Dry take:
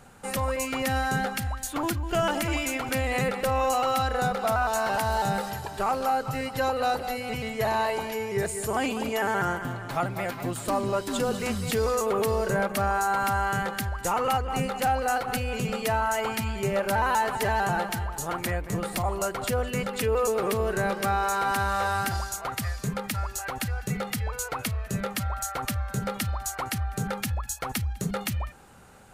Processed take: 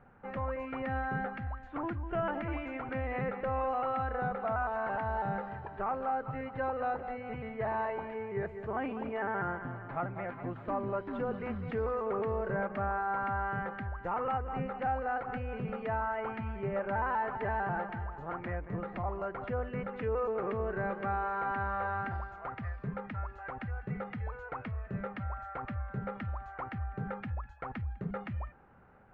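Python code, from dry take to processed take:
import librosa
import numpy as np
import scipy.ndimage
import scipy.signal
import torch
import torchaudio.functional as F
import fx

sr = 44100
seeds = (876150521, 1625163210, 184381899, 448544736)

y = scipy.signal.sosfilt(scipy.signal.butter(4, 2000.0, 'lowpass', fs=sr, output='sos'), x)
y = y * librosa.db_to_amplitude(-7.5)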